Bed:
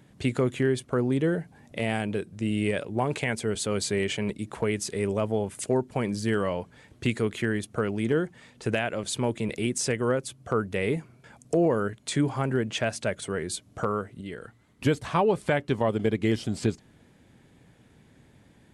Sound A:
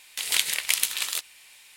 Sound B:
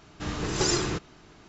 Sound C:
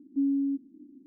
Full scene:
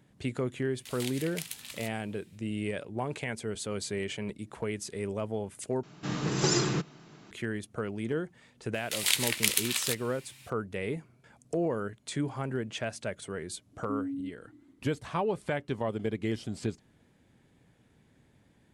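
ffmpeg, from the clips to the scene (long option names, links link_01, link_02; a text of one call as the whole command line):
ffmpeg -i bed.wav -i cue0.wav -i cue1.wav -i cue2.wav -filter_complex "[1:a]asplit=2[link_01][link_02];[0:a]volume=-7dB[link_03];[2:a]lowshelf=frequency=100:width_type=q:width=3:gain=-13[link_04];[3:a]equalizer=frequency=340:width_type=o:width=0.77:gain=11.5[link_05];[link_03]asplit=2[link_06][link_07];[link_06]atrim=end=5.834[link_08];[link_04]atrim=end=1.48,asetpts=PTS-STARTPTS,volume=-2dB[link_09];[link_07]atrim=start=7.306[link_10];[link_01]atrim=end=1.76,asetpts=PTS-STARTPTS,volume=-16dB,afade=type=in:duration=0.1,afade=type=out:start_time=1.66:duration=0.1,adelay=680[link_11];[link_02]atrim=end=1.76,asetpts=PTS-STARTPTS,volume=-3dB,afade=type=in:duration=0.004:curve=hsin,afade=type=out:start_time=1.756:duration=0.004:curve=hsin,adelay=385434S[link_12];[link_05]atrim=end=1.06,asetpts=PTS-STARTPTS,volume=-15dB,afade=type=in:duration=0.004:curve=hsin,afade=type=out:start_time=1.056:duration=0.004:curve=hsin,adelay=13730[link_13];[link_08][link_09]acrossfade=duration=0.004:curve1=hsin:curve2=hsin[link_14];[link_14][link_10]acrossfade=duration=0.004:curve1=hsin:curve2=hsin[link_15];[link_15][link_11][link_12][link_13]amix=inputs=4:normalize=0" out.wav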